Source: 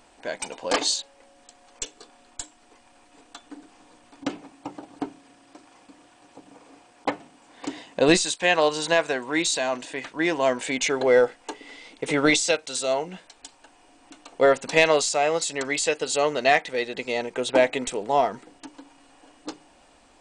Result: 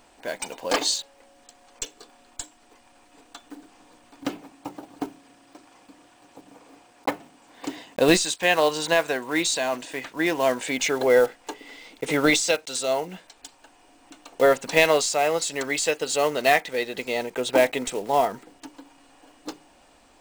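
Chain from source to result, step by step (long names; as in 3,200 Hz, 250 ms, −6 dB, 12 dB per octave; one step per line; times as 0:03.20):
one scale factor per block 5 bits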